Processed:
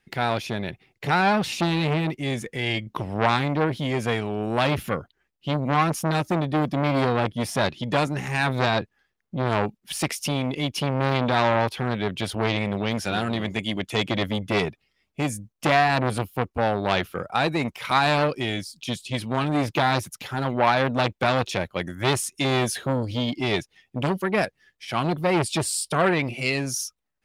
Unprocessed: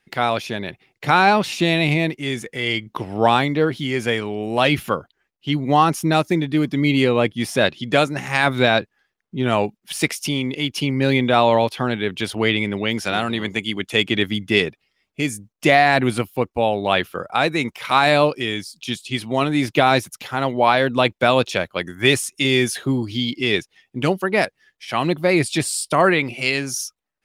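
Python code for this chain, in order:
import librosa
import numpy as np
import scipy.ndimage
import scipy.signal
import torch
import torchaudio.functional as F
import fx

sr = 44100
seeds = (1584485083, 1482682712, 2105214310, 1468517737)

y = fx.low_shelf(x, sr, hz=190.0, db=8.0)
y = fx.transformer_sat(y, sr, knee_hz=1400.0)
y = y * 10.0 ** (-2.5 / 20.0)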